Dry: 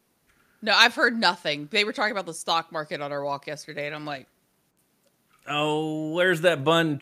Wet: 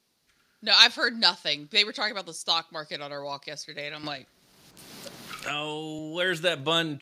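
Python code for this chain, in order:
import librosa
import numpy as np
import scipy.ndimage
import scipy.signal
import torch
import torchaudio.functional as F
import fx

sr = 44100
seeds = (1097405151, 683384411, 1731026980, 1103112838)

y = fx.peak_eq(x, sr, hz=4500.0, db=12.5, octaves=1.4)
y = fx.band_squash(y, sr, depth_pct=100, at=(4.03, 5.99))
y = F.gain(torch.from_numpy(y), -7.0).numpy()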